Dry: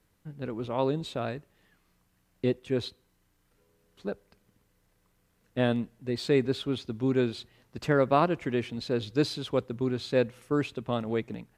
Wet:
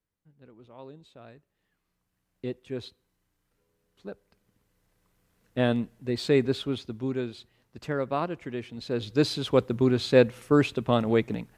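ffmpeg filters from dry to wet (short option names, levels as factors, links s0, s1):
-af "volume=5.01,afade=t=in:st=1.13:d=1.54:silence=0.251189,afade=t=in:st=4.08:d=1.71:silence=0.398107,afade=t=out:st=6.5:d=0.72:silence=0.421697,afade=t=in:st=8.7:d=0.97:silence=0.251189"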